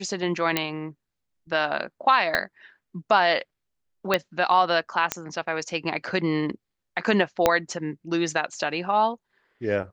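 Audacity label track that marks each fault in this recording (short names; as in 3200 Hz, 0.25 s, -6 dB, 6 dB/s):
0.570000	0.570000	pop -6 dBFS
2.350000	2.350000	pop -9 dBFS
4.140000	4.140000	pop -7 dBFS
5.120000	5.120000	pop -6 dBFS
7.460000	7.460000	pop -4 dBFS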